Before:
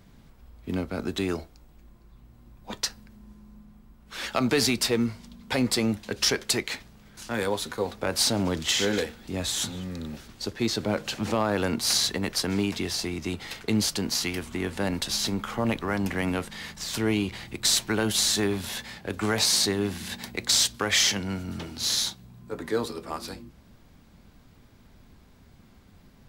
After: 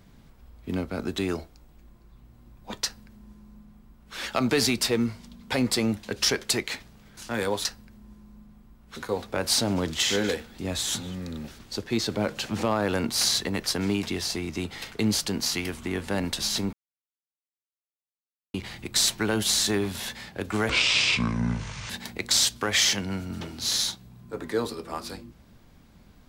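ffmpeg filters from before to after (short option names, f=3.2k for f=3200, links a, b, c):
-filter_complex "[0:a]asplit=7[a][b][c][d][e][f][g];[a]atrim=end=7.652[h];[b]atrim=start=2.838:end=4.152[i];[c]atrim=start=7.648:end=15.42,asetpts=PTS-STARTPTS,afade=t=out:st=7.768:d=0.004:c=hsin[j];[d]atrim=start=15.42:end=17.23,asetpts=PTS-STARTPTS,volume=0[k];[e]atrim=start=17.23:end=19.384,asetpts=PTS-STARTPTS,afade=t=in:d=0.004:c=hsin[l];[f]atrim=start=19.38:end=20.08,asetpts=PTS-STARTPTS,asetrate=25578,aresample=44100,atrim=end_sample=53224,asetpts=PTS-STARTPTS[m];[g]atrim=start=20.076[n];[h][i]acrossfade=d=0.004:c1=hsin:c2=hsin[o];[j][k][l]concat=n=3:v=0:a=1[p];[o][p]acrossfade=d=0.004:c1=hsin:c2=hsin[q];[q][m]acrossfade=d=0.004:c1=hsin:c2=hsin[r];[r][n]acrossfade=d=0.004:c1=hsin:c2=hsin"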